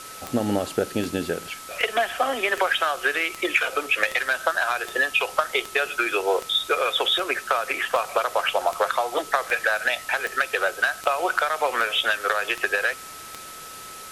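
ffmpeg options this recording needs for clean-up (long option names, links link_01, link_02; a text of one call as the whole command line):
ffmpeg -i in.wav -af "adeclick=threshold=4,bandreject=frequency=1300:width=30,afwtdn=0.01" out.wav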